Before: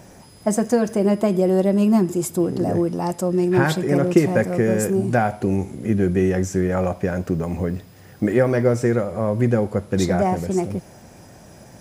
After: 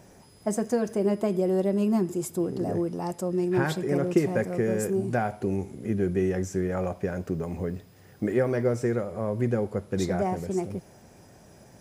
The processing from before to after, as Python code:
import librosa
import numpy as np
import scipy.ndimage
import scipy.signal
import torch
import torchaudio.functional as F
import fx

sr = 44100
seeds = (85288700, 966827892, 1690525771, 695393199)

y = fx.peak_eq(x, sr, hz=410.0, db=4.5, octaves=0.24)
y = F.gain(torch.from_numpy(y), -8.0).numpy()